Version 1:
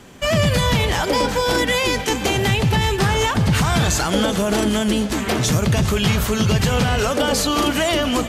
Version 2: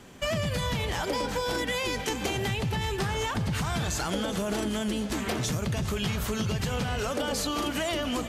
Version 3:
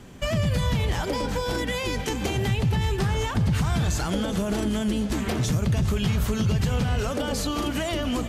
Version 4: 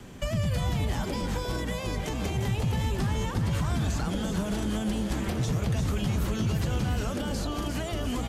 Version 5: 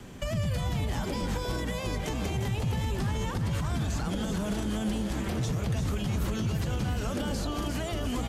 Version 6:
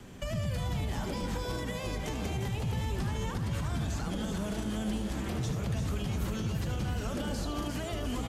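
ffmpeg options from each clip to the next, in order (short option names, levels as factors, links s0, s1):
-af "acompressor=threshold=0.1:ratio=6,volume=0.501"
-af "lowshelf=f=230:g=9.5"
-filter_complex "[0:a]asplit=6[s0][s1][s2][s3][s4][s5];[s1]adelay=347,afreqshift=120,volume=0.355[s6];[s2]adelay=694,afreqshift=240,volume=0.153[s7];[s3]adelay=1041,afreqshift=360,volume=0.0653[s8];[s4]adelay=1388,afreqshift=480,volume=0.0282[s9];[s5]adelay=1735,afreqshift=600,volume=0.0122[s10];[s0][s6][s7][s8][s9][s10]amix=inputs=6:normalize=0,acrossover=split=220|510|1200|5500[s11][s12][s13][s14][s15];[s11]acompressor=threshold=0.0562:ratio=4[s16];[s12]acompressor=threshold=0.00708:ratio=4[s17];[s13]acompressor=threshold=0.0112:ratio=4[s18];[s14]acompressor=threshold=0.00794:ratio=4[s19];[s15]acompressor=threshold=0.00501:ratio=4[s20];[s16][s17][s18][s19][s20]amix=inputs=5:normalize=0"
-af "alimiter=limit=0.0841:level=0:latency=1:release=60"
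-af "aecho=1:1:75:0.335,volume=0.668"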